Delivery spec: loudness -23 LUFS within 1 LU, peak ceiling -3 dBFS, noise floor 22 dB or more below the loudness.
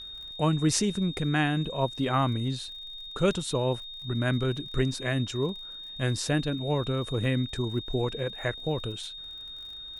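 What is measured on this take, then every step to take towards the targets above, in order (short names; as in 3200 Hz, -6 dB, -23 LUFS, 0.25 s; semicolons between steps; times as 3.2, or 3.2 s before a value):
ticks 47/s; steady tone 3700 Hz; tone level -39 dBFS; loudness -29.0 LUFS; peak -11.5 dBFS; loudness target -23.0 LUFS
-> de-click; notch 3700 Hz, Q 30; gain +6 dB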